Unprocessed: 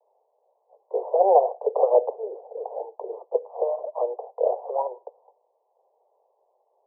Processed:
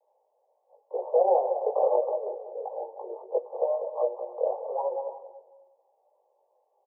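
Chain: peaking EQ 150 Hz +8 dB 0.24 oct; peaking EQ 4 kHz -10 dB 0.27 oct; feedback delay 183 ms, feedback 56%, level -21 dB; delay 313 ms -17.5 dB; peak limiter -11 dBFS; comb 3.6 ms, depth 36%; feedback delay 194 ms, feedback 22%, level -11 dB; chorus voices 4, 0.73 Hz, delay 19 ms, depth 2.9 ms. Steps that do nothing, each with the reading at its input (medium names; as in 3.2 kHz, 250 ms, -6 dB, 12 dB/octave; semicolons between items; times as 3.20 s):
peaking EQ 150 Hz: input has nothing below 340 Hz; peaking EQ 4 kHz: input has nothing above 1.1 kHz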